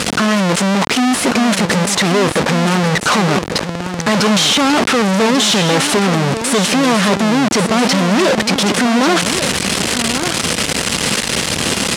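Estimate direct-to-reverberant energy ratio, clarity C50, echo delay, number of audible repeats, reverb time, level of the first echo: none, none, 1.142 s, 1, none, -9.0 dB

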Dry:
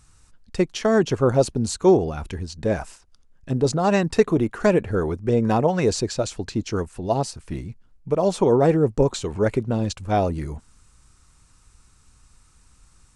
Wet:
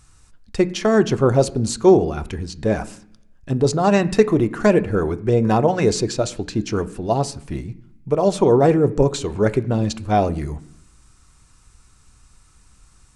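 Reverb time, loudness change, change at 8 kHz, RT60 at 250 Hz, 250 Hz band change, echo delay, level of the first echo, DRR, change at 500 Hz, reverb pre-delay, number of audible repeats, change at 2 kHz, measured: 0.70 s, +3.0 dB, +2.5 dB, 0.85 s, +3.0 dB, none, none, 10.5 dB, +3.0 dB, 3 ms, none, +2.5 dB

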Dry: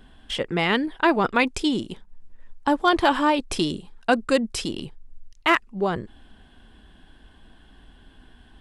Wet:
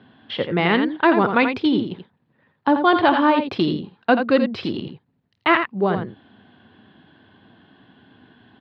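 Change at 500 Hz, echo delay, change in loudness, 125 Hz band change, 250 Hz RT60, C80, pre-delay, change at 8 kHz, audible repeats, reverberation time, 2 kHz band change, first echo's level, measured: +4.0 dB, 51 ms, +3.5 dB, +5.0 dB, none, none, none, under -25 dB, 2, none, +2.5 dB, -20.0 dB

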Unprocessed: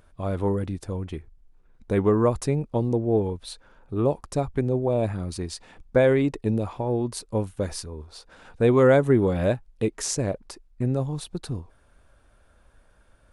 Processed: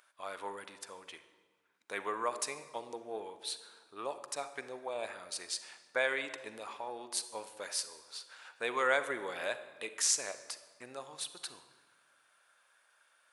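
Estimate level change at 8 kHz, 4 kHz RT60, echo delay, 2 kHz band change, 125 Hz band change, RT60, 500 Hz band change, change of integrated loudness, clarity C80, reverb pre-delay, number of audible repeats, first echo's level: 0.0 dB, 1.0 s, none, -1.0 dB, -39.5 dB, 1.5 s, -16.5 dB, -12.5 dB, 13.5 dB, 37 ms, none, none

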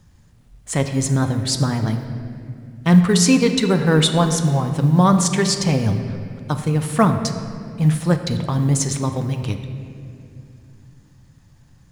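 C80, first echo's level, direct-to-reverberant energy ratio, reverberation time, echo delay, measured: 9.0 dB, none, 6.5 dB, 2.6 s, none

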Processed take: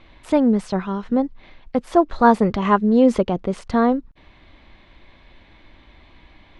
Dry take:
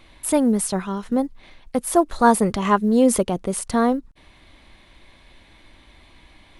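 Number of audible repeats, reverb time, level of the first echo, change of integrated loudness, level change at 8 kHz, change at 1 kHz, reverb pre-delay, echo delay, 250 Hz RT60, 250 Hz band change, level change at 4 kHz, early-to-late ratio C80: none, none, none, +1.0 dB, under -15 dB, +1.0 dB, none, none, none, +2.0 dB, -3.0 dB, none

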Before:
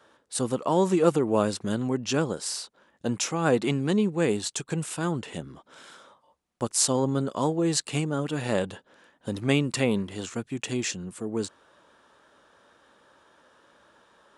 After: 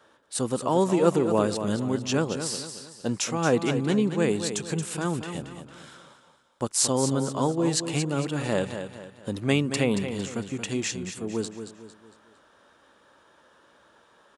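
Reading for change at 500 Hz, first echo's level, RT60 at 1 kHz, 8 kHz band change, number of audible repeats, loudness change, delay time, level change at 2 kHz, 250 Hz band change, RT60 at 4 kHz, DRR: +0.5 dB, -9.0 dB, none, +0.5 dB, 4, +0.5 dB, 0.227 s, +0.5 dB, +0.5 dB, none, none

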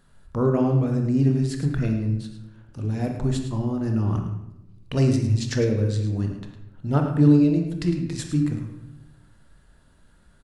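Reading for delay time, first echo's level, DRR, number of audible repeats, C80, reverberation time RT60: 0.107 s, -10.5 dB, 3.0 dB, 1, 7.0 dB, 0.90 s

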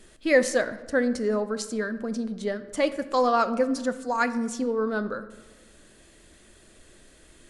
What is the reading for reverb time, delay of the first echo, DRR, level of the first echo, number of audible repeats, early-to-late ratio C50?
1.2 s, none, 11.5 dB, none, none, 14.0 dB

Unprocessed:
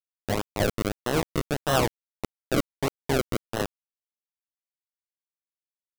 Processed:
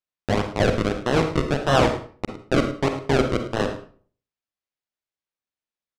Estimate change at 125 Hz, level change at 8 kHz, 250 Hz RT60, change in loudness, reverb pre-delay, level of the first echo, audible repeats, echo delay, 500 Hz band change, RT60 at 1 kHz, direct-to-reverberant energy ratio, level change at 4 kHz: +6.0 dB, -2.5 dB, 0.50 s, +5.5 dB, 40 ms, -15.0 dB, 1, 0.107 s, +6.0 dB, 0.45 s, 5.0 dB, +3.5 dB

